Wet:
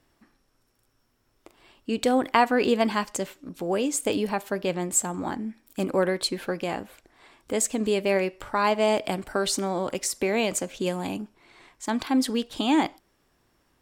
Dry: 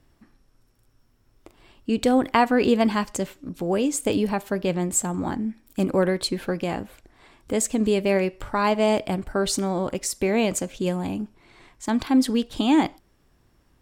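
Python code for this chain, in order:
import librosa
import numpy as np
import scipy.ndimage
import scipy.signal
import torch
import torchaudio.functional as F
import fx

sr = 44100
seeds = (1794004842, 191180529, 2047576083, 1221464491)

y = fx.low_shelf(x, sr, hz=200.0, db=-11.5)
y = fx.band_squash(y, sr, depth_pct=40, at=(9.04, 11.17))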